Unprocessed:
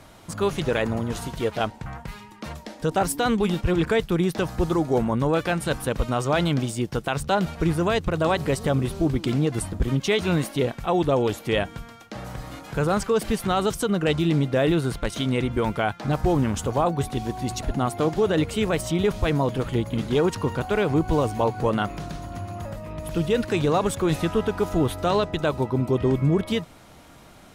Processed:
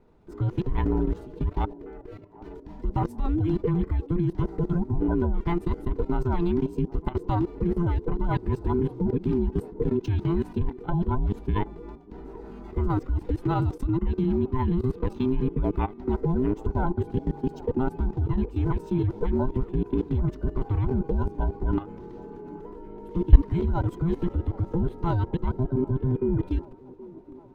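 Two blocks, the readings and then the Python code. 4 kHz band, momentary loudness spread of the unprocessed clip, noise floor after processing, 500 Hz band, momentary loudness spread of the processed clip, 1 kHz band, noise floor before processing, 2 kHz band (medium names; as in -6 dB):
under -15 dB, 11 LU, -45 dBFS, -7.0 dB, 15 LU, -7.0 dB, -48 dBFS, -14.5 dB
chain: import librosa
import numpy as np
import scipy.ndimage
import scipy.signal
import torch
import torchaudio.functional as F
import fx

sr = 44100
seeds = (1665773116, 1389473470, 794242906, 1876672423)

p1 = fx.band_invert(x, sr, width_hz=500)
p2 = fx.tilt_eq(p1, sr, slope=-4.5)
p3 = fx.level_steps(p2, sr, step_db=18)
p4 = p3 + fx.echo_wet_bandpass(p3, sr, ms=775, feedback_pct=64, hz=460.0, wet_db=-17.0, dry=0)
p5 = np.interp(np.arange(len(p4)), np.arange(len(p4))[::2], p4[::2])
y = p5 * librosa.db_to_amplitude(-5.0)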